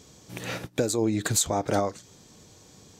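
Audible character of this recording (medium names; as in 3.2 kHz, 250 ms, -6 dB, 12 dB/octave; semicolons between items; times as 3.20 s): noise floor -54 dBFS; spectral tilt -4.0 dB/octave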